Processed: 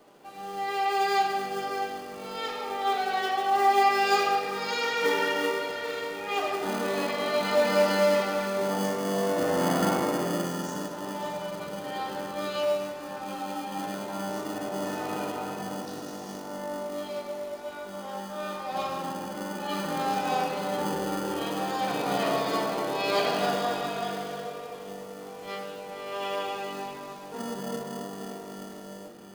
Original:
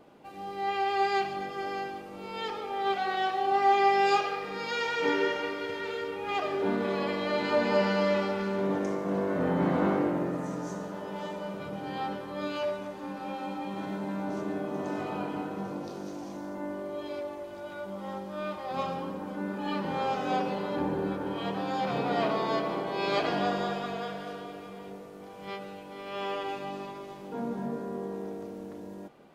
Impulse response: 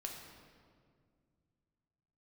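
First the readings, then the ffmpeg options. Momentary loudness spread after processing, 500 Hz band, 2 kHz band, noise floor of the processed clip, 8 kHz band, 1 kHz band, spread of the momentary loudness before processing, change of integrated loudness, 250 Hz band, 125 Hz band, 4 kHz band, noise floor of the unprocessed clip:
14 LU, +2.0 dB, +3.0 dB, −42 dBFS, can't be measured, +2.5 dB, 14 LU, +2.0 dB, −1.0 dB, −1.0 dB, +5.0 dB, −44 dBFS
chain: -filter_complex "[1:a]atrim=start_sample=2205[link_01];[0:a][link_01]afir=irnorm=-1:irlink=0,acrossover=split=320|1000[link_02][link_03][link_04];[link_02]acrusher=samples=28:mix=1:aa=0.000001[link_05];[link_05][link_03][link_04]amix=inputs=3:normalize=0,bass=frequency=250:gain=-6,treble=frequency=4000:gain=6,volume=4dB"

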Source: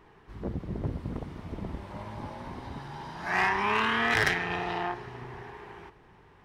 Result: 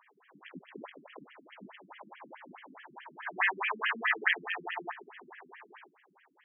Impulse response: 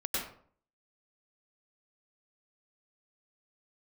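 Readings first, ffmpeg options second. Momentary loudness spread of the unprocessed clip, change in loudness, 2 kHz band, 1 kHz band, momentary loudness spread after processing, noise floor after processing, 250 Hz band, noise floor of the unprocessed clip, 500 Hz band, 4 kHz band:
18 LU, −1.0 dB, −2.5 dB, −8.0 dB, 22 LU, −68 dBFS, −14.0 dB, −57 dBFS, −10.5 dB, −5.5 dB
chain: -af "acrusher=bits=3:mode=log:mix=0:aa=0.000001,aemphasis=mode=production:type=riaa,afftfilt=real='re*between(b*sr/1024,220*pow(2400/220,0.5+0.5*sin(2*PI*4.7*pts/sr))/1.41,220*pow(2400/220,0.5+0.5*sin(2*PI*4.7*pts/sr))*1.41)':imag='im*between(b*sr/1024,220*pow(2400/220,0.5+0.5*sin(2*PI*4.7*pts/sr))/1.41,220*pow(2400/220,0.5+0.5*sin(2*PI*4.7*pts/sr))*1.41)':win_size=1024:overlap=0.75"

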